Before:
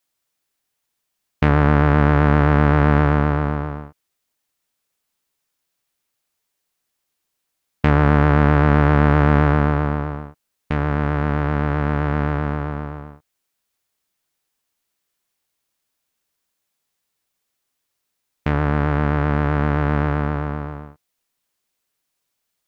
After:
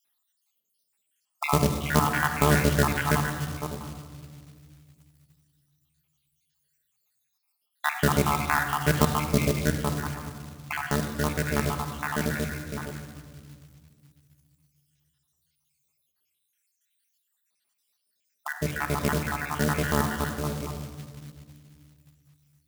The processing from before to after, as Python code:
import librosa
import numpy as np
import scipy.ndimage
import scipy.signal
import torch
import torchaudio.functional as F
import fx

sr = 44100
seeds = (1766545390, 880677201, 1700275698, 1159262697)

y = fx.spec_dropout(x, sr, seeds[0], share_pct=75)
y = scipy.signal.sosfilt(scipy.signal.butter(2, 95.0, 'highpass', fs=sr, output='sos'), y)
y = fx.room_shoebox(y, sr, seeds[1], volume_m3=3100.0, walls='mixed', distance_m=1.4)
y = fx.quant_float(y, sr, bits=2)
y = fx.high_shelf(y, sr, hz=2100.0, db=10.5)
y = F.gain(torch.from_numpy(y), -3.5).numpy()